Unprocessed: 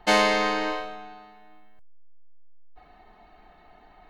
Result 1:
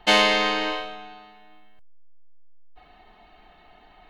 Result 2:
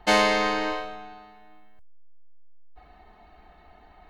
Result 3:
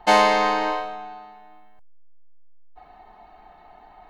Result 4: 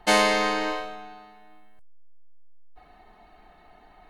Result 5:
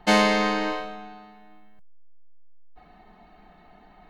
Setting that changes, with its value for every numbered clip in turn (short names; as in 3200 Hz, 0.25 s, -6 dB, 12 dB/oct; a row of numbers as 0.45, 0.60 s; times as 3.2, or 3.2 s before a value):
bell, frequency: 3100, 63, 860, 10000, 190 Hz